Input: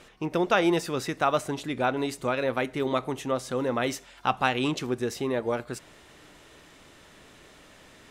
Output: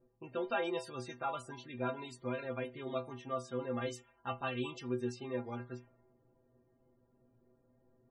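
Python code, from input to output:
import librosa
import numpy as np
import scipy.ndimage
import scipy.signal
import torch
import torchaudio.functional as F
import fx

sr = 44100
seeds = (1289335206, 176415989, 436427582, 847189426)

y = fx.env_lowpass(x, sr, base_hz=380.0, full_db=-25.0)
y = fx.stiff_resonator(y, sr, f0_hz=120.0, decay_s=0.27, stiffness=0.008)
y = fx.spec_topn(y, sr, count=64)
y = y * 10.0 ** (-2.5 / 20.0)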